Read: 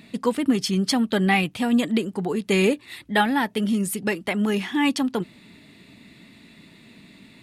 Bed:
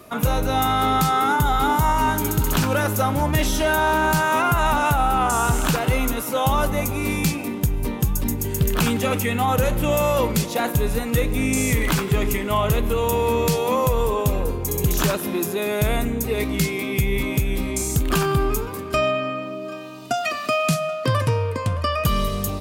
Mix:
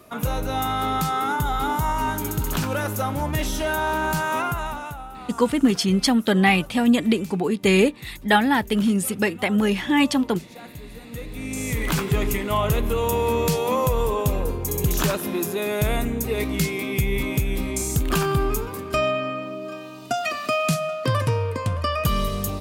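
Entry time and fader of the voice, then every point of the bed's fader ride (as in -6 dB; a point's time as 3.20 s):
5.15 s, +2.5 dB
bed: 4.41 s -4.5 dB
5.12 s -19.5 dB
10.88 s -19.5 dB
11.99 s -1.5 dB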